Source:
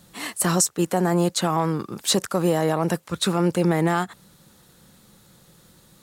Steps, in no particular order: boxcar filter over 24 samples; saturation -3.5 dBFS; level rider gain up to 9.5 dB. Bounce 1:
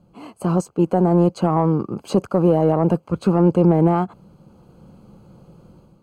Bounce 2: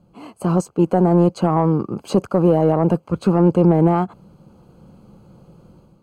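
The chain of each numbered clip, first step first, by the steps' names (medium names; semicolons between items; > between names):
level rider > boxcar filter > saturation; boxcar filter > level rider > saturation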